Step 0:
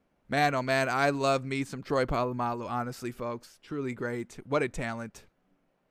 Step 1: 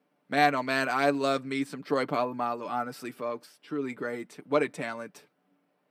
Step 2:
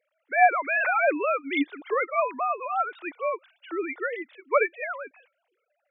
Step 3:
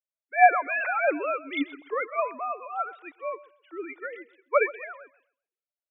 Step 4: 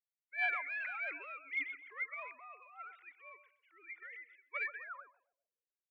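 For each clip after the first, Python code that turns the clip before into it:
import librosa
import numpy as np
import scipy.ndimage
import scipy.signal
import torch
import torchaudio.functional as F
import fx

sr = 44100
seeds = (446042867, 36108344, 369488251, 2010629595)

y1 = scipy.signal.sosfilt(scipy.signal.butter(4, 180.0, 'highpass', fs=sr, output='sos'), x)
y1 = fx.peak_eq(y1, sr, hz=6700.0, db=-9.0, octaves=0.26)
y1 = y1 + 0.49 * np.pad(y1, (int(6.8 * sr / 1000.0), 0))[:len(y1)]
y2 = fx.sine_speech(y1, sr)
y2 = fx.tilt_eq(y2, sr, slope=4.0)
y2 = F.gain(torch.from_numpy(y2), 5.0).numpy()
y3 = fx.echo_feedback(y2, sr, ms=130, feedback_pct=38, wet_db=-16.5)
y3 = fx.band_widen(y3, sr, depth_pct=70)
y3 = F.gain(torch.from_numpy(y3), -3.5).numpy()
y4 = fx.tracing_dist(y3, sr, depth_ms=0.065)
y4 = fx.filter_sweep_bandpass(y4, sr, from_hz=2100.0, to_hz=350.0, start_s=4.6, end_s=5.85, q=7.1)
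y4 = fx.transient(y4, sr, attack_db=-2, sustain_db=7)
y4 = F.gain(torch.from_numpy(y4), -1.5).numpy()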